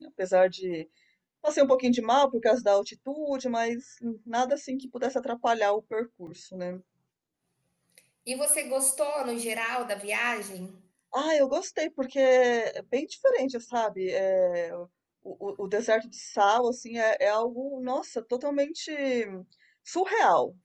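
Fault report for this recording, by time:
6.27 gap 2.7 ms

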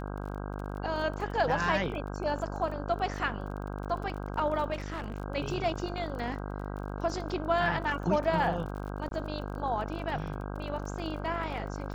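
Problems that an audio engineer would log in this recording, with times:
buzz 50 Hz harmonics 32 -37 dBFS
crackle 32/s -39 dBFS
4.73–5.18 clipped -31.5 dBFS
9.09–9.11 gap 22 ms

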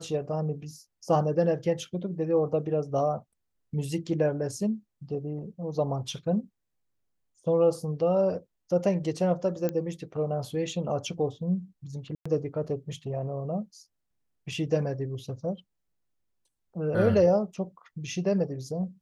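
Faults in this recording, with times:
9.69 pop -17 dBFS
12.15–12.26 gap 0.105 s

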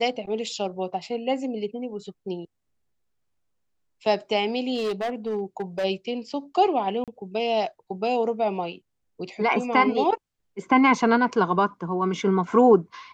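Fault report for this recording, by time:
4.74–5.85 clipped -23 dBFS
7.04–7.08 gap 37 ms

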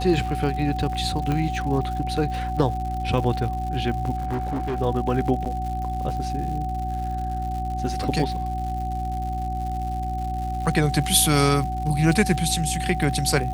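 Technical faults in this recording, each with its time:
crackle 160/s -32 dBFS
hum 60 Hz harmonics 6 -29 dBFS
tone 750 Hz -28 dBFS
1.32 pop -14 dBFS
4.16–4.8 clipped -22.5 dBFS
5.45–5.46 gap 7.9 ms

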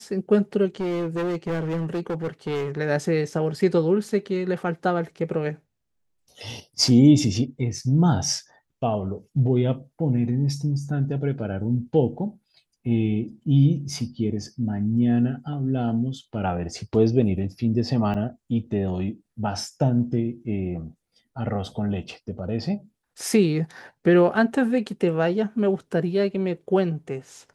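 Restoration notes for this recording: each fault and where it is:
0.8–2.78 clipped -23 dBFS
18.14–18.15 gap 7.8 ms

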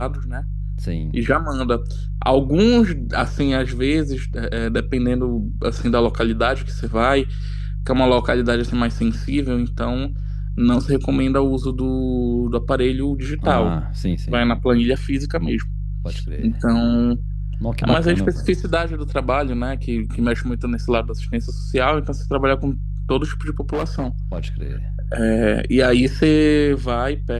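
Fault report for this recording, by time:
hum 50 Hz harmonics 3 -25 dBFS
23.73–24.4 clipped -18 dBFS

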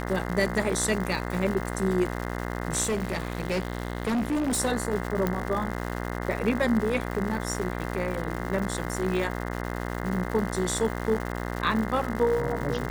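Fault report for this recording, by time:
buzz 60 Hz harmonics 35 -32 dBFS
crackle 280/s -32 dBFS
2.83–4.6 clipped -23 dBFS
5.27 pop -13 dBFS

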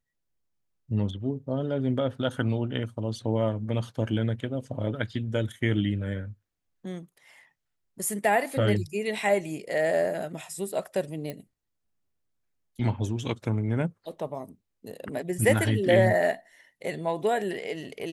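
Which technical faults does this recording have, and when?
11.3 pop -21 dBFS

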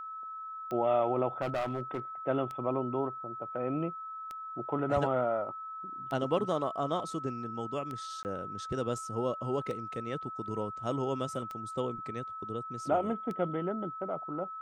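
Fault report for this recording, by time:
tick 33 1/3 rpm -26 dBFS
tone 1300 Hz -39 dBFS
1.41–2 clipped -28.5 dBFS
8.23–8.25 gap 19 ms

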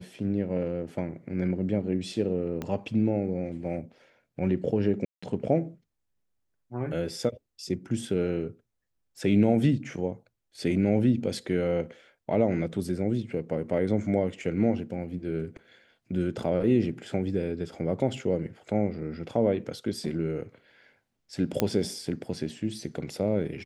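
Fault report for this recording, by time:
2.62 pop -19 dBFS
5.05–5.22 gap 0.175 s
21.6 pop -9 dBFS

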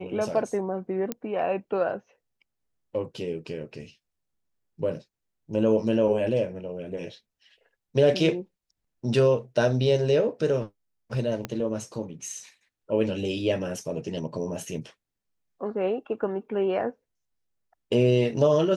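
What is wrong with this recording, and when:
1.12 pop -14 dBFS
11.45 pop -15 dBFS

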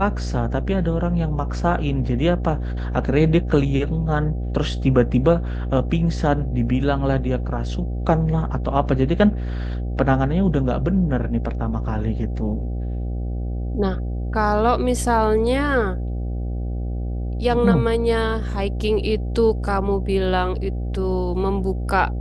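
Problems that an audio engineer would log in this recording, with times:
buzz 60 Hz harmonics 13 -25 dBFS

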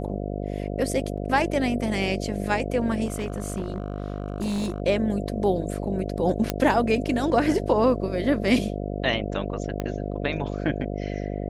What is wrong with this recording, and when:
buzz 50 Hz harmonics 14 -30 dBFS
1.17–1.18 gap 5.7 ms
3.05–4.8 clipped -23.5 dBFS
6.5 pop -8 dBFS
9.8 pop -15 dBFS

